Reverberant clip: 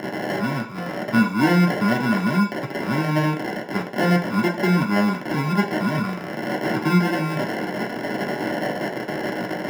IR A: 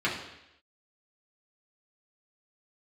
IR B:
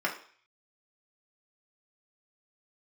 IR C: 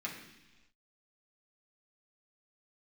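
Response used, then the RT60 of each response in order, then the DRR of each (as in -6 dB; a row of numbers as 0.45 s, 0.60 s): B; 0.85 s, 0.45 s, 1.1 s; -6.5 dB, -2.5 dB, -4.5 dB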